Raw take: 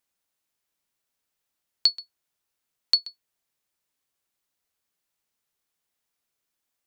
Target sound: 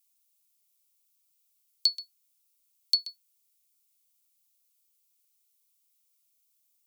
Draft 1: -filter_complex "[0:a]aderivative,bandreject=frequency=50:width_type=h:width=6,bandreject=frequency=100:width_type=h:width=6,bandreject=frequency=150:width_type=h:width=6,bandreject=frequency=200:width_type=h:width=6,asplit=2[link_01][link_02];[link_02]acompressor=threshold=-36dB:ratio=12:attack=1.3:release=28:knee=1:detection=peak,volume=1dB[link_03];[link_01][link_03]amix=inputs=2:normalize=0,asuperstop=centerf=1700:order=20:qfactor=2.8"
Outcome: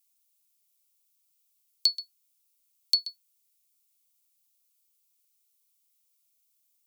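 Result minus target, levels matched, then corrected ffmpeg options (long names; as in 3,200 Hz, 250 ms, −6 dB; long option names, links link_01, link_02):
downward compressor: peak gain reduction −8.5 dB
-filter_complex "[0:a]aderivative,bandreject=frequency=50:width_type=h:width=6,bandreject=frequency=100:width_type=h:width=6,bandreject=frequency=150:width_type=h:width=6,bandreject=frequency=200:width_type=h:width=6,asplit=2[link_01][link_02];[link_02]acompressor=threshold=-45dB:ratio=12:attack=1.3:release=28:knee=1:detection=peak,volume=1dB[link_03];[link_01][link_03]amix=inputs=2:normalize=0,asuperstop=centerf=1700:order=20:qfactor=2.8"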